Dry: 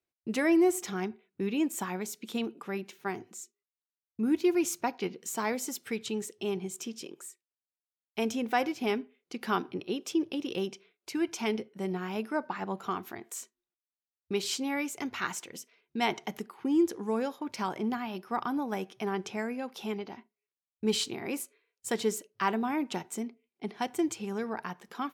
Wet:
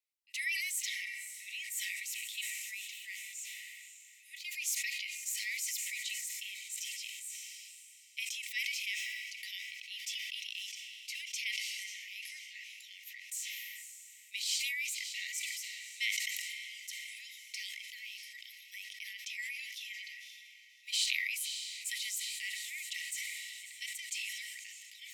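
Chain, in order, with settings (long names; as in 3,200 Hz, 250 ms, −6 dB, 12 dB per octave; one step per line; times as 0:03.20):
Chebyshev high-pass filter 1,900 Hz, order 10
on a send: feedback delay with all-pass diffusion 592 ms, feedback 53%, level −12 dB
on the sum: level that may fall only so fast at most 22 dB per second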